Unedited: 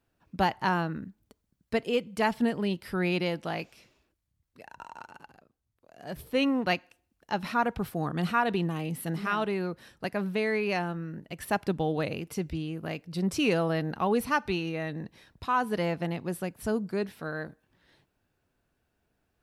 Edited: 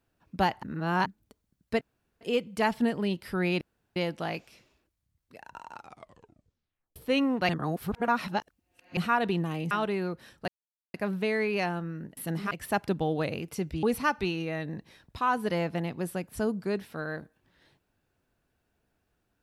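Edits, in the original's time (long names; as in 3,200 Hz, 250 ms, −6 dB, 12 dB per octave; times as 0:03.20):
0:00.63–0:01.06: reverse
0:01.81: splice in room tone 0.40 s
0:03.21: splice in room tone 0.35 s
0:04.99: tape stop 1.22 s
0:06.74–0:08.22: reverse
0:08.96–0:09.30: move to 0:11.30
0:10.07: splice in silence 0.46 s
0:12.62–0:14.10: remove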